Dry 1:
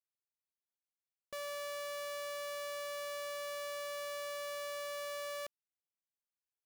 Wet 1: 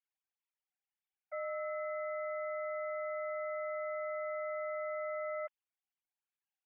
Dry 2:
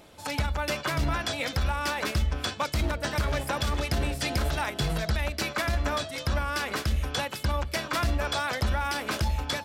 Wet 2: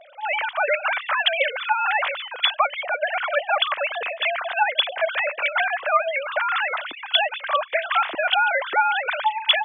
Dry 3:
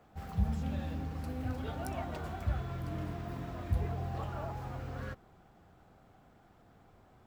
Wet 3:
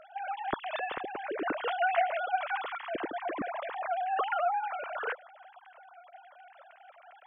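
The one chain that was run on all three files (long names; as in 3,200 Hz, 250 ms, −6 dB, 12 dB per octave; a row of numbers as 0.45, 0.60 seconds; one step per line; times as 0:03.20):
three sine waves on the formant tracks
tilt shelving filter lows −3.5 dB, about 1,100 Hz
level +4.5 dB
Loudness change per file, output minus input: +2.5, +7.0, +5.0 LU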